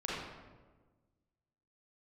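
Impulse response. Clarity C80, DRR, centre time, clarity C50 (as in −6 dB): 1.0 dB, −7.0 dB, 92 ms, −3.0 dB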